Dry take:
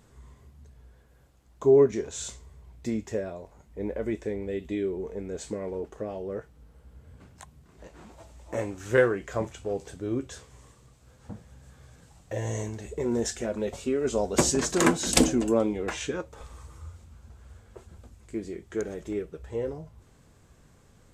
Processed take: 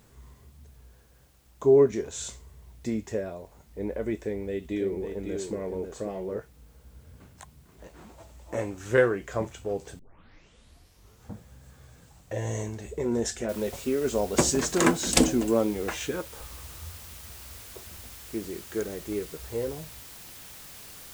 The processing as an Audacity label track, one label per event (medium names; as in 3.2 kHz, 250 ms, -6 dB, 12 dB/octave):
4.170000	6.380000	delay 545 ms -6.5 dB
9.990000	9.990000	tape start 1.33 s
13.490000	13.490000	noise floor step -67 dB -46 dB